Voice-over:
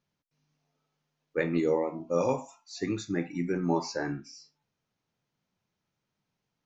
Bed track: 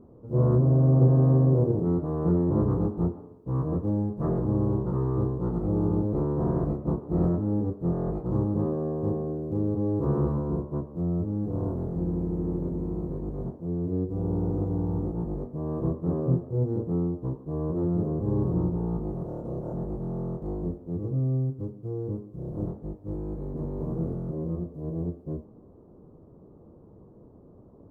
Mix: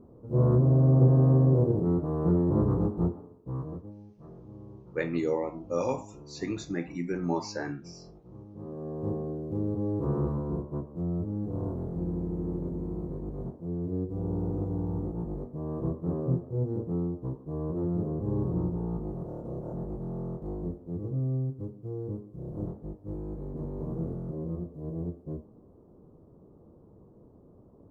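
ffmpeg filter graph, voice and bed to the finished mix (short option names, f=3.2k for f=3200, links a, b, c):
-filter_complex "[0:a]adelay=3600,volume=-2dB[a];[1:a]volume=17dB,afade=t=out:st=3.11:d=0.83:silence=0.0944061,afade=t=in:st=8.53:d=0.6:silence=0.125893[b];[a][b]amix=inputs=2:normalize=0"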